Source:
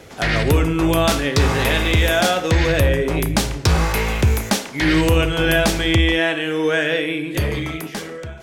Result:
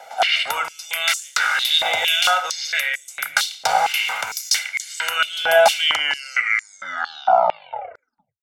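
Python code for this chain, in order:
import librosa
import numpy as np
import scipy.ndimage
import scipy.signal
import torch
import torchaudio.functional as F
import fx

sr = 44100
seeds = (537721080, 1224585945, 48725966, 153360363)

y = fx.tape_stop_end(x, sr, length_s=2.65)
y = y + 0.9 * np.pad(y, (int(1.4 * sr / 1000.0), 0))[:len(y)]
y = fx.filter_held_highpass(y, sr, hz=4.4, low_hz=780.0, high_hz=7100.0)
y = F.gain(torch.from_numpy(y), -3.5).numpy()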